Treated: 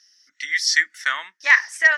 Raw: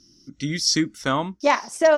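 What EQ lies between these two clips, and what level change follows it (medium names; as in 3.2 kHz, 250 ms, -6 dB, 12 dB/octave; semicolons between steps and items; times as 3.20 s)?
resonant high-pass 1.8 kHz, resonance Q 10; -1.0 dB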